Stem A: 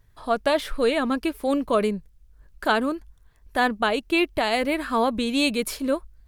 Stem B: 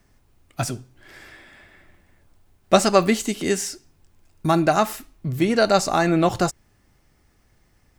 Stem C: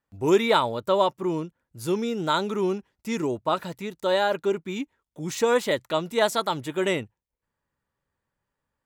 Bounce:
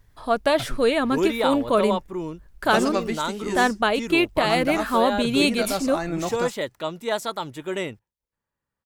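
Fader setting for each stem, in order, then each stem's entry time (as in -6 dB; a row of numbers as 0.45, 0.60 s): +1.5, -9.5, -3.5 dB; 0.00, 0.00, 0.90 s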